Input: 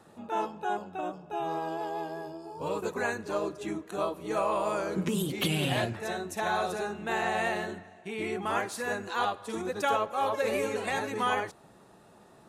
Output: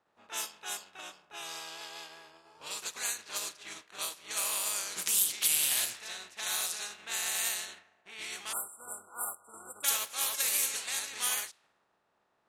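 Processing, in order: spectral contrast reduction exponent 0.49; level-controlled noise filter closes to 900 Hz, open at -25 dBFS; spectral selection erased 8.53–9.84 s, 1.5–7.3 kHz; pre-emphasis filter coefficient 0.97; trim +4.5 dB

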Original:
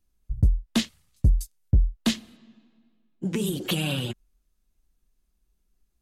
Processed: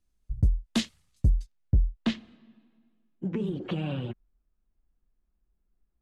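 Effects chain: low-pass 10 kHz 12 dB/octave, from 1.34 s 2.9 kHz, from 3.28 s 1.6 kHz; trim -3 dB

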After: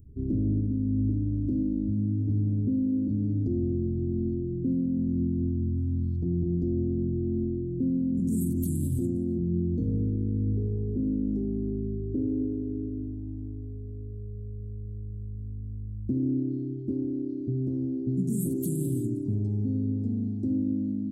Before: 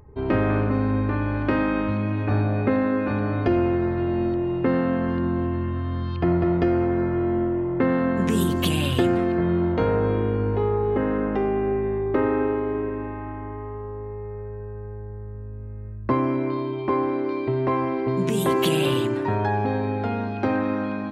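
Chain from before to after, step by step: Chebyshev band-stop 270–8100 Hz, order 3; peak limiter -20 dBFS, peak gain reduction 7 dB

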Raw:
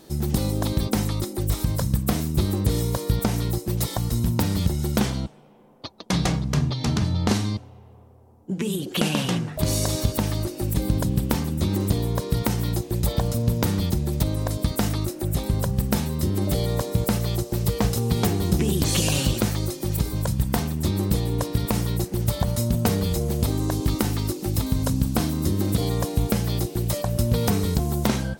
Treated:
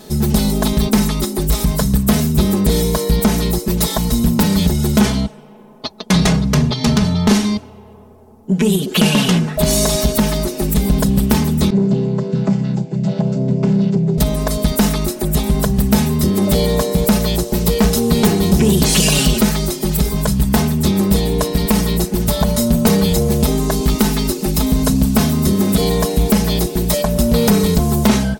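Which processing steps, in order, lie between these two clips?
11.70–14.18 s: vocoder on a held chord major triad, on C3; comb 4.7 ms, depth 94%; saturation -13.5 dBFS, distortion -17 dB; trim +8.5 dB

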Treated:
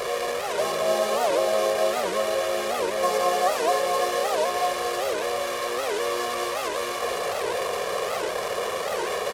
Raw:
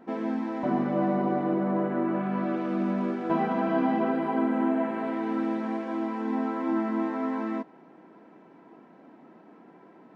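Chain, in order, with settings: one-bit delta coder 64 kbps, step -25 dBFS; high-pass 77 Hz 6 dB/octave; resonant low shelf 340 Hz -7.5 dB, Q 3; comb 1.9 ms, depth 76%; echo whose repeats swap between lows and highs 243 ms, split 1.1 kHz, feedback 61%, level -4.5 dB; speed mistake 44.1 kHz file played as 48 kHz; warped record 78 rpm, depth 250 cents

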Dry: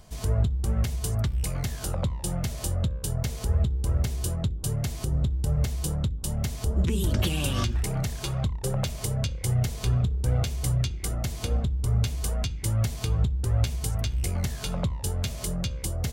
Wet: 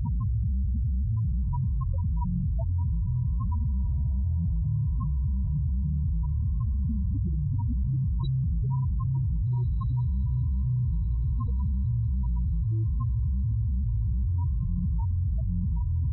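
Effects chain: one-bit comparator; high-pass 72 Hz 6 dB/octave; bass shelf 300 Hz +9.5 dB; small resonant body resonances 970/3900 Hz, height 14 dB, ringing for 25 ms; loudest bins only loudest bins 4; on a send: echo that smears into a reverb 1650 ms, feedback 45%, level -14 dB; on the sum: level flattener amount 70%; trim -5.5 dB

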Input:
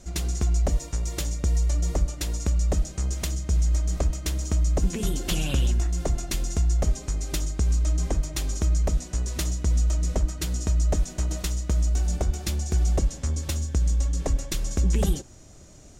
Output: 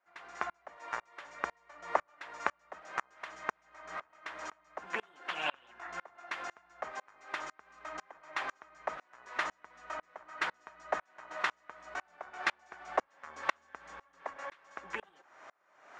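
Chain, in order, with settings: compression, threshold -23 dBFS, peak gain reduction 6.5 dB; Butterworth band-pass 1.3 kHz, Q 1.2; sawtooth tremolo in dB swelling 2 Hz, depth 33 dB; trim +18 dB

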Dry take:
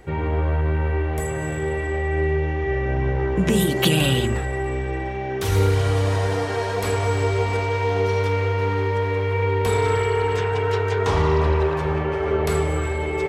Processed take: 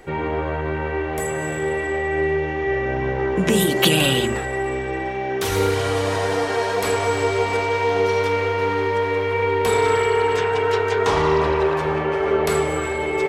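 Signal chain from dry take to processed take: peaking EQ 79 Hz -13.5 dB 1.8 oct; trim +4 dB

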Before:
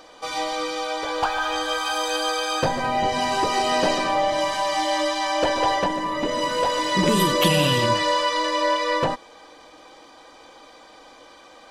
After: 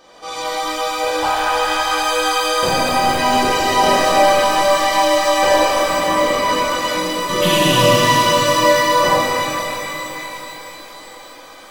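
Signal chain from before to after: 5.64–7.29 s: compressor with a negative ratio -26 dBFS, ratio -0.5; pitch-shifted reverb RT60 3.7 s, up +12 st, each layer -8 dB, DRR -10 dB; trim -4 dB

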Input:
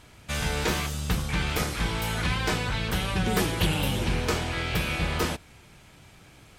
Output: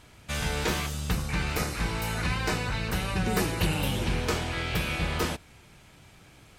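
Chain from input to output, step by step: 1.11–3.84 s: band-stop 3.3 kHz, Q 6.8; trim -1.5 dB

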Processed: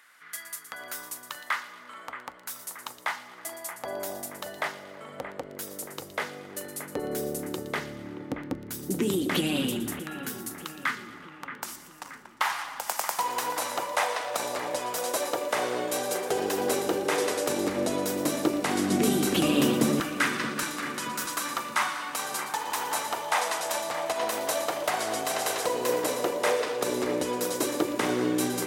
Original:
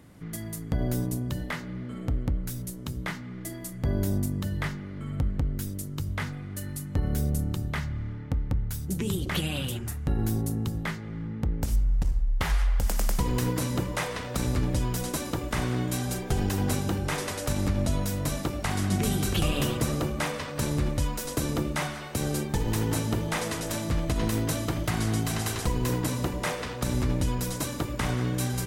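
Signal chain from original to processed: LFO high-pass saw down 0.1 Hz 240–1500 Hz; two-band feedback delay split 2.7 kHz, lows 626 ms, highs 117 ms, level -11.5 dB; trim +2 dB

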